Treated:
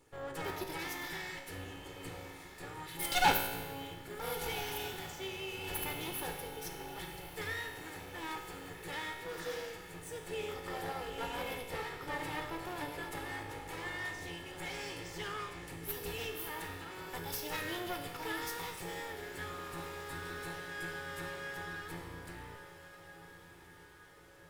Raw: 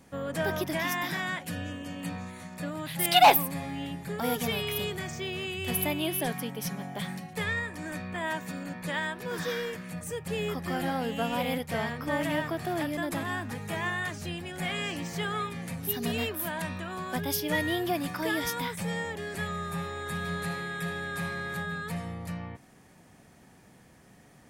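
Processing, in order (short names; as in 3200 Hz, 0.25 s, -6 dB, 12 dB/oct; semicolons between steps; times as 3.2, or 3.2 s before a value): minimum comb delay 2.3 ms; resonator 55 Hz, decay 1.3 s, harmonics all, mix 80%; diffused feedback echo 1.434 s, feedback 56%, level -13 dB; gain +3 dB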